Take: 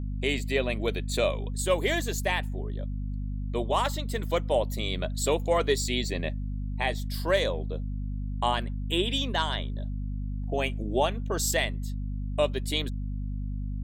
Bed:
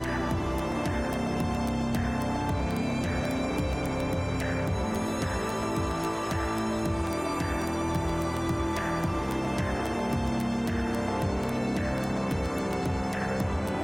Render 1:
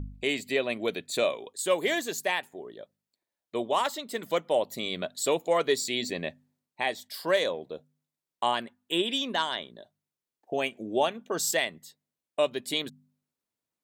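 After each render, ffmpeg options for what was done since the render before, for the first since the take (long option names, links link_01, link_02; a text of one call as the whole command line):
ffmpeg -i in.wav -af "bandreject=frequency=50:width_type=h:width=4,bandreject=frequency=100:width_type=h:width=4,bandreject=frequency=150:width_type=h:width=4,bandreject=frequency=200:width_type=h:width=4,bandreject=frequency=250:width_type=h:width=4" out.wav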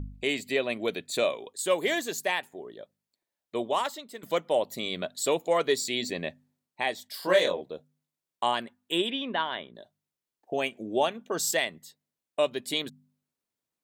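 ffmpeg -i in.wav -filter_complex "[0:a]asettb=1/sr,asplit=3[link_01][link_02][link_03];[link_01]atrim=end=7.204[link_04];[link_02]atrim=start=7.2:end=7.61,asetpts=PTS-STARTPTS,afade=type=in:duration=0.004:curve=qsin,afade=type=out:start_time=0.406:duration=0.004:curve=qsin,asplit=2[link_05][link_06];[link_06]adelay=22,volume=-2dB[link_07];[link_05][link_07]amix=inputs=2:normalize=0,atrim=end_sample=18081[link_08];[link_03]atrim=start=7.606[link_09];[link_04][link_08]acrossfade=duration=0.004:curve1=hsin:curve2=qsin[link_10];[link_10][link_09]acrossfade=duration=0.004:curve1=qsin:curve2=hsin,asettb=1/sr,asplit=3[link_11][link_12][link_13];[link_11]atrim=end=9.104[link_14];[link_12]atrim=start=9.1:end=9.75,asetpts=PTS-STARTPTS,afade=type=in:duration=0.004:curve=qsin,afade=type=out:start_time=0.646:duration=0.004:curve=qsin,lowpass=frequency=3100:width=0.5412,lowpass=frequency=3100:width=1.3066[link_15];[link_13]atrim=start=9.746[link_16];[link_14][link_15]acrossfade=duration=0.004:curve1=hsin:curve2=qsin[link_17];[link_17][link_16]acrossfade=duration=0.004:curve1=qsin:curve2=hsin,asplit=2[link_18][link_19];[link_18]atrim=end=4.23,asetpts=PTS-STARTPTS,afade=type=out:start_time=3.67:duration=0.56:silence=0.251189[link_20];[link_19]atrim=start=4.23,asetpts=PTS-STARTPTS,afade=type=in:duration=0.004:curve=hsin:silence=0.251189[link_21];[link_20][link_21]concat=n=2:v=0:a=1" out.wav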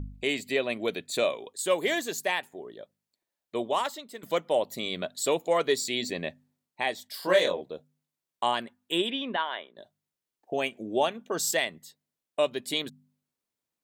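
ffmpeg -i in.wav -filter_complex "[0:a]asplit=3[link_01][link_02][link_03];[link_01]afade=type=out:start_time=9.36:duration=0.02[link_04];[link_02]highpass=450,lowpass=3800,afade=type=in:start_time=9.36:duration=0.02,afade=type=out:start_time=9.76:duration=0.02[link_05];[link_03]afade=type=in:start_time=9.76:duration=0.02[link_06];[link_04][link_05][link_06]amix=inputs=3:normalize=0" out.wav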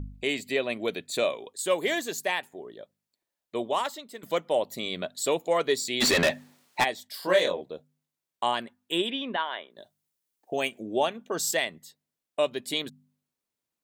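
ffmpeg -i in.wav -filter_complex "[0:a]asplit=3[link_01][link_02][link_03];[link_01]afade=type=out:start_time=6:duration=0.02[link_04];[link_02]asplit=2[link_05][link_06];[link_06]highpass=frequency=720:poles=1,volume=32dB,asoftclip=type=tanh:threshold=-13.5dB[link_07];[link_05][link_07]amix=inputs=2:normalize=0,lowpass=frequency=6400:poles=1,volume=-6dB,afade=type=in:start_time=6:duration=0.02,afade=type=out:start_time=6.83:duration=0.02[link_08];[link_03]afade=type=in:start_time=6.83:duration=0.02[link_09];[link_04][link_08][link_09]amix=inputs=3:normalize=0,asettb=1/sr,asplit=3[link_10][link_11][link_12];[link_10]atrim=end=9.704[link_13];[link_11]atrim=start=9.7:end=10.8,asetpts=PTS-STARTPTS,afade=type=in:duration=0.004:curve=qsin,afade=type=out:start_time=1.096:duration=0.004:curve=qsin,highshelf=frequency=5400:gain=9[link_14];[link_12]atrim=start=10.796[link_15];[link_13][link_14]acrossfade=duration=0.004:curve1=hsin:curve2=qsin[link_16];[link_16][link_15]acrossfade=duration=0.004:curve1=qsin:curve2=hsin" out.wav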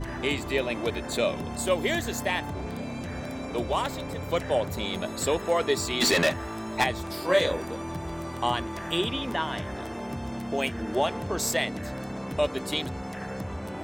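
ffmpeg -i in.wav -i bed.wav -filter_complex "[1:a]volume=-6dB[link_01];[0:a][link_01]amix=inputs=2:normalize=0" out.wav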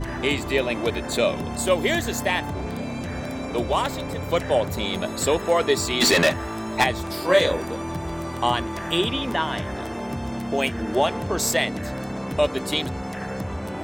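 ffmpeg -i in.wav -af "volume=4.5dB" out.wav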